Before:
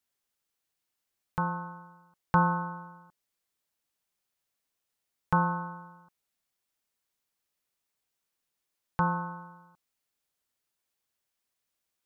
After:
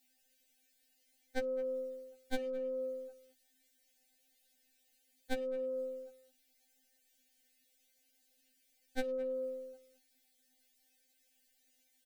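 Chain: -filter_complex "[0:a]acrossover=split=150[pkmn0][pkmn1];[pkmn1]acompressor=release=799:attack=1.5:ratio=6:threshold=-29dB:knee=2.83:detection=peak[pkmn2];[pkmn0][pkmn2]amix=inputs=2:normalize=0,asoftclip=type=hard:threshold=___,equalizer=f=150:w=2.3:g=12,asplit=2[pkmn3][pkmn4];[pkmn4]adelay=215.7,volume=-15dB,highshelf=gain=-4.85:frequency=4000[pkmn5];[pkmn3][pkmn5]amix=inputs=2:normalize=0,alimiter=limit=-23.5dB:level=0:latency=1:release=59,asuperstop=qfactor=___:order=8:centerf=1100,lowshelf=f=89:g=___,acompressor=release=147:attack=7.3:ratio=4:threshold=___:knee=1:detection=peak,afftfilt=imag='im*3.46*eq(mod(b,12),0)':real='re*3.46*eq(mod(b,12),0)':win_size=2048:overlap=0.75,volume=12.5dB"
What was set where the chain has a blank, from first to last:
-26dB, 1.4, 2.5, -35dB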